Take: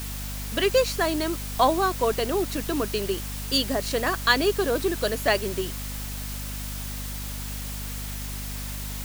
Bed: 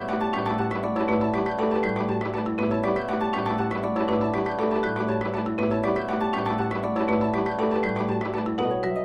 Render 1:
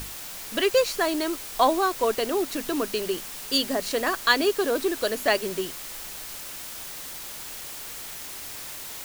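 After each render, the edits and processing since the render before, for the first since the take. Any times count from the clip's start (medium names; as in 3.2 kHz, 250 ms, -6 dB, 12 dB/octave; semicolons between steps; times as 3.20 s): hum notches 50/100/150/200/250 Hz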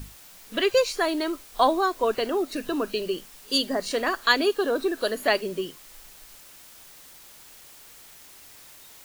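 noise print and reduce 11 dB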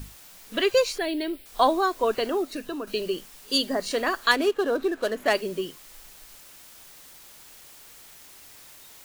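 0.98–1.46 s: static phaser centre 2.8 kHz, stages 4; 2.31–2.87 s: fade out, to -8 dB; 4.31–5.34 s: median filter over 9 samples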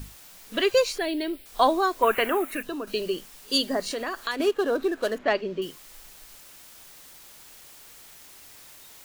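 2.02–2.63 s: FFT filter 490 Hz 0 dB, 1.5 kHz +10 dB, 2.4 kHz +12 dB, 4.7 kHz -13 dB, 11 kHz +10 dB; 3.90–4.40 s: compression 3:1, threshold -28 dBFS; 5.18–5.62 s: distance through air 190 m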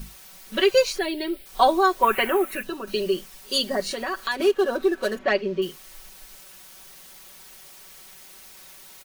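band-stop 7.4 kHz, Q 19; comb 5.3 ms, depth 82%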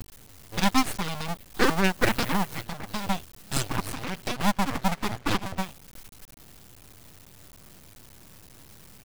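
cycle switcher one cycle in 2, muted; full-wave rectifier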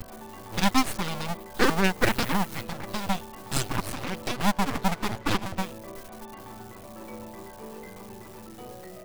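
add bed -18.5 dB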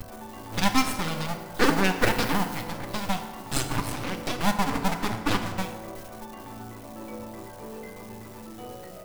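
FDN reverb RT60 1.6 s, low-frequency decay 0.9×, high-frequency decay 0.6×, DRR 5.5 dB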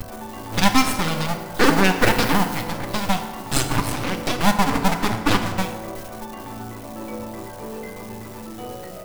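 trim +6.5 dB; peak limiter -3 dBFS, peak gain reduction 3 dB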